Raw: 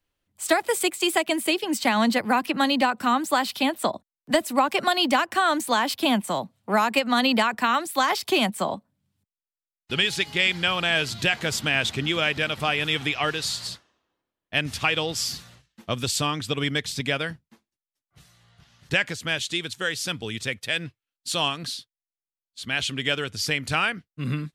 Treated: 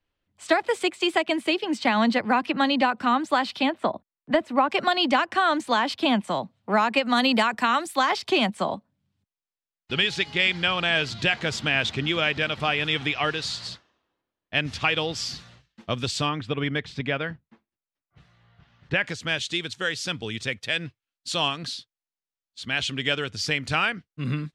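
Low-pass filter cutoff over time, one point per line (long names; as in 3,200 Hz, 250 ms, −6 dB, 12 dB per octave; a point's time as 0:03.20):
4,300 Hz
from 0:03.70 2,400 Hz
from 0:04.70 4,700 Hz
from 0:07.04 8,800 Hz
from 0:07.95 5,200 Hz
from 0:16.29 2,500 Hz
from 0:19.04 6,600 Hz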